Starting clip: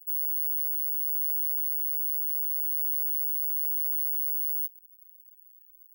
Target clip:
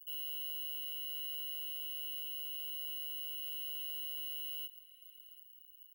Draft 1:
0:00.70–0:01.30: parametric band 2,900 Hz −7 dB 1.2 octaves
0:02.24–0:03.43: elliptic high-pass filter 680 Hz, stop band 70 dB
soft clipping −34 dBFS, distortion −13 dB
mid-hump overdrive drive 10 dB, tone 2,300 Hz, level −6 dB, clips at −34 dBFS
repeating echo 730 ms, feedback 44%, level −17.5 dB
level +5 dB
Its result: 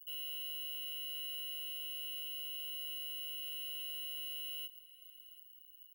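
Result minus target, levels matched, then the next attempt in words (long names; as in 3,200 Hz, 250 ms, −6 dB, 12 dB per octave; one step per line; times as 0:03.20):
soft clipping: distortion +11 dB
0:00.70–0:01.30: parametric band 2,900 Hz −7 dB 1.2 octaves
0:02.24–0:03.43: elliptic high-pass filter 680 Hz, stop band 70 dB
soft clipping −25.5 dBFS, distortion −23 dB
mid-hump overdrive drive 10 dB, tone 2,300 Hz, level −6 dB, clips at −34 dBFS
repeating echo 730 ms, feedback 44%, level −17.5 dB
level +5 dB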